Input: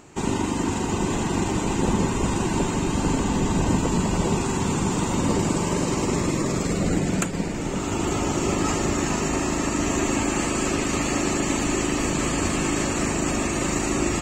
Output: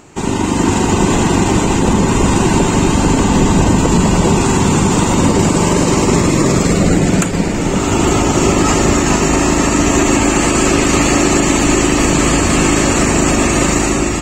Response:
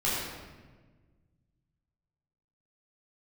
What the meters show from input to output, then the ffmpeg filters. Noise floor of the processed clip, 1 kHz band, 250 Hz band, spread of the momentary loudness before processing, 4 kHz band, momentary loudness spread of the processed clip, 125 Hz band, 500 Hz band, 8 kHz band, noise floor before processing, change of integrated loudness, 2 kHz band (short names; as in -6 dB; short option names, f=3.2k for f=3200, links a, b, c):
-16 dBFS, +11.5 dB, +11.0 dB, 2 LU, +11.5 dB, 2 LU, +11.5 dB, +11.5 dB, +11.5 dB, -27 dBFS, +11.5 dB, +11.5 dB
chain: -filter_complex "[0:a]dynaudnorm=f=110:g=9:m=5.5dB,asplit=2[a][b];[1:a]atrim=start_sample=2205[c];[b][c]afir=irnorm=-1:irlink=0,volume=-28dB[d];[a][d]amix=inputs=2:normalize=0,alimiter=level_in=7.5dB:limit=-1dB:release=50:level=0:latency=1,volume=-1dB"